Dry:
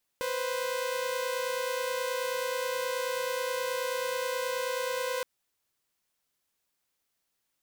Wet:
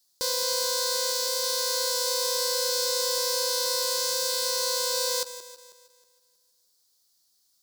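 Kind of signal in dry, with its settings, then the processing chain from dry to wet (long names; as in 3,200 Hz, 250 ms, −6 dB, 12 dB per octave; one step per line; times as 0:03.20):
held notes B4/C5 saw, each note −30 dBFS 5.02 s
feedback delay that plays each chunk backwards 159 ms, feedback 53%, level −13 dB
high shelf with overshoot 3,400 Hz +10.5 dB, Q 3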